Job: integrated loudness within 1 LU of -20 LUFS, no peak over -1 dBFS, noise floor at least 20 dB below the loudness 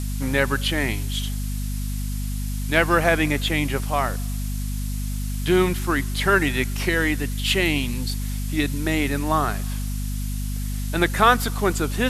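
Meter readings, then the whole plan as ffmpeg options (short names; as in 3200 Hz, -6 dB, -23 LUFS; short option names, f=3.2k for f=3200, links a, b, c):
hum 50 Hz; harmonics up to 250 Hz; hum level -24 dBFS; noise floor -27 dBFS; noise floor target -43 dBFS; loudness -23.0 LUFS; peak -1.5 dBFS; loudness target -20.0 LUFS
-> -af "bandreject=f=50:t=h:w=4,bandreject=f=100:t=h:w=4,bandreject=f=150:t=h:w=4,bandreject=f=200:t=h:w=4,bandreject=f=250:t=h:w=4"
-af "afftdn=nr=16:nf=-27"
-af "volume=3dB,alimiter=limit=-1dB:level=0:latency=1"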